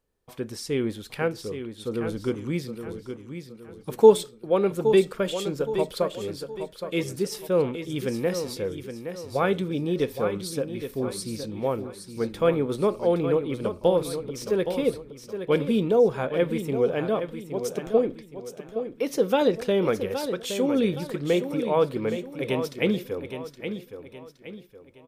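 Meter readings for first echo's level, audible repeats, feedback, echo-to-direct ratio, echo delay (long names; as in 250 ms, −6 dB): −9.0 dB, 4, 38%, −8.5 dB, 818 ms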